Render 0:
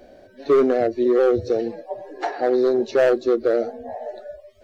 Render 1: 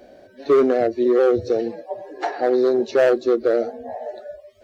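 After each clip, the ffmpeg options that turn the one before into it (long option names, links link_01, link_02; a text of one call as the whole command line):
ffmpeg -i in.wav -af "highpass=frequency=86:poles=1,volume=1dB" out.wav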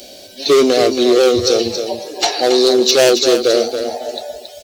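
ffmpeg -i in.wav -af "aexciter=amount=12.2:drive=4.1:freq=2600,aeval=exprs='0.668*(cos(1*acos(clip(val(0)/0.668,-1,1)))-cos(1*PI/2))+0.133*(cos(5*acos(clip(val(0)/0.668,-1,1)))-cos(5*PI/2))+0.0376*(cos(7*acos(clip(val(0)/0.668,-1,1)))-cos(7*PI/2))':channel_layout=same,aecho=1:1:276|552|828:0.398|0.0916|0.0211,volume=1.5dB" out.wav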